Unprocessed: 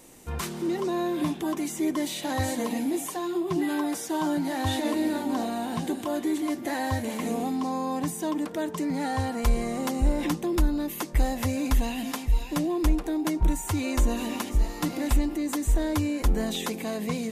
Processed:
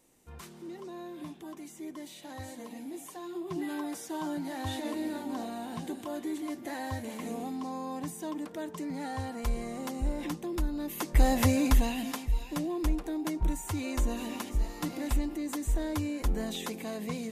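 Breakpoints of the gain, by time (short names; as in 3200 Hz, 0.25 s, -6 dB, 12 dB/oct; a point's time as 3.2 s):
2.7 s -15 dB
3.62 s -8 dB
10.71 s -8 dB
11.37 s +4 dB
12.35 s -6 dB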